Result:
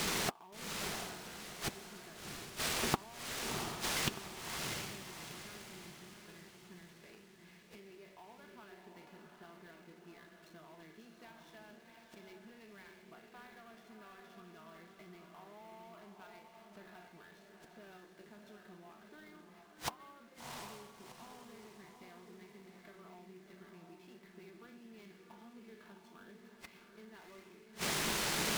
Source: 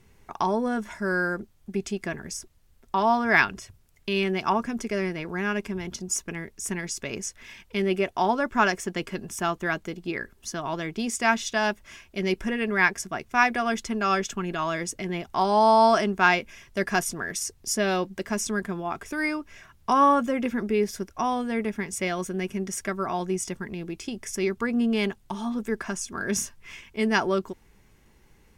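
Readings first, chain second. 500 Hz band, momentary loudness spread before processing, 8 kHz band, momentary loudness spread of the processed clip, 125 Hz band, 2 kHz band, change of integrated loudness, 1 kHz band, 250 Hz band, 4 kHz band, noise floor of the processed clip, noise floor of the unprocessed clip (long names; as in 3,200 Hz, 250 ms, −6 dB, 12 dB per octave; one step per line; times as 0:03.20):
−22.0 dB, 13 LU, −11.0 dB, 21 LU, −15.0 dB, −18.5 dB, −13.5 dB, −22.0 dB, −21.5 dB, −7.0 dB, −61 dBFS, −59 dBFS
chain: peak hold with a decay on every bin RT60 0.36 s
hum removal 189.5 Hz, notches 16
brick-wall band-pass 140–4,500 Hz
in parallel at +2 dB: brickwall limiter −23 dBFS, peak gain reduction 19 dB
on the sum: downward compressor 5 to 1, threshold −27 dBFS, peak gain reduction 14 dB
bit-depth reduction 8 bits, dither triangular
gate with flip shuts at −35 dBFS, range −40 dB
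notch comb filter 270 Hz
on a send: feedback delay with all-pass diffusion 710 ms, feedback 43%, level −4 dB
on the sum: bad sample-rate conversion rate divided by 3×, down none, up hold
short delay modulated by noise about 1,700 Hz, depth 0.034 ms
level +13.5 dB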